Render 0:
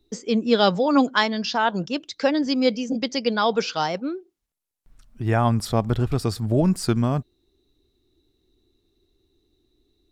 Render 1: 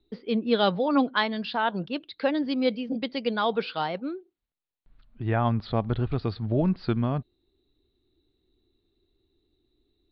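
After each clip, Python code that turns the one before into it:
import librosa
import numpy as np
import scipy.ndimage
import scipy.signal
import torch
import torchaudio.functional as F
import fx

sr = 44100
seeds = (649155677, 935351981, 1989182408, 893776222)

y = scipy.signal.sosfilt(scipy.signal.butter(12, 4400.0, 'lowpass', fs=sr, output='sos'), x)
y = y * 10.0 ** (-4.5 / 20.0)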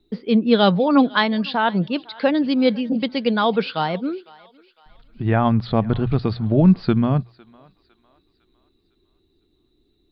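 y = fx.peak_eq(x, sr, hz=180.0, db=6.0, octaves=0.84)
y = fx.hum_notches(y, sr, base_hz=60, count=2)
y = fx.echo_thinned(y, sr, ms=505, feedback_pct=46, hz=660.0, wet_db=-22.0)
y = y * 10.0 ** (6.0 / 20.0)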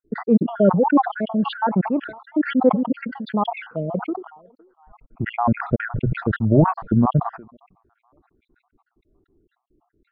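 y = fx.spec_dropout(x, sr, seeds[0], share_pct=58)
y = scipy.signal.sosfilt(scipy.signal.butter(4, 1100.0, 'lowpass', fs=sr, output='sos'), y)
y = fx.sustainer(y, sr, db_per_s=110.0)
y = y * 10.0 ** (2.5 / 20.0)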